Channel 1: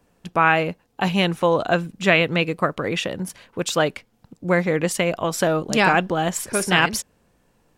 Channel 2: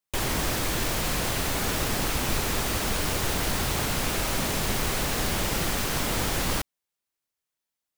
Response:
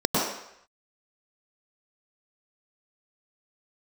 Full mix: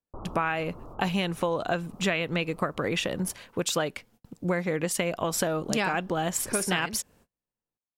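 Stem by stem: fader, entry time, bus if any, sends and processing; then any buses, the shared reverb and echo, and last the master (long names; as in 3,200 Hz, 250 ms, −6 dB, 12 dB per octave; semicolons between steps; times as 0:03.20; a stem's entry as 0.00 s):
0.0 dB, 0.00 s, no send, noise gate −54 dBFS, range −33 dB; high-shelf EQ 9,400 Hz +6 dB
−9.5 dB, 0.00 s, muted 0:03.34–0:05.30, no send, Butterworth low-pass 1,300 Hz 96 dB per octave; automatic ducking −11 dB, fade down 1.95 s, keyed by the first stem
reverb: not used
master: downward compressor 6 to 1, threshold −24 dBFS, peak gain reduction 12.5 dB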